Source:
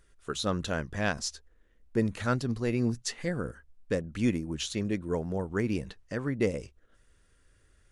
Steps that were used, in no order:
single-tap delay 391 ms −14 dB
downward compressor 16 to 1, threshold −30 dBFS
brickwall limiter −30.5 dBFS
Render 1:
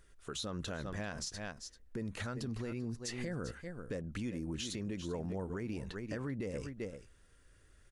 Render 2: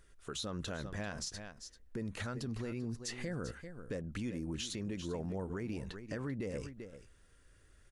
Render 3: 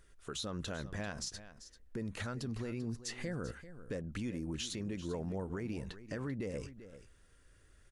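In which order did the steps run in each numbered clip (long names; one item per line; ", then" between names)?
single-tap delay, then downward compressor, then brickwall limiter
downward compressor, then single-tap delay, then brickwall limiter
downward compressor, then brickwall limiter, then single-tap delay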